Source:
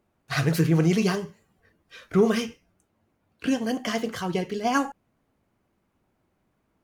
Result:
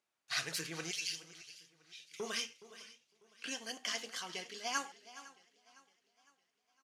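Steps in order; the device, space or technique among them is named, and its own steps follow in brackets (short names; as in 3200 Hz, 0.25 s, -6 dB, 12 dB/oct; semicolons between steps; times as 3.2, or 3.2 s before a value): 0.91–2.2 steep high-pass 2300 Hz 36 dB/oct; piezo pickup straight into a mixer (LPF 6000 Hz 12 dB/oct; differentiator); echo 0.419 s -16.5 dB; warbling echo 0.508 s, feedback 47%, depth 90 cents, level -20.5 dB; gain +3 dB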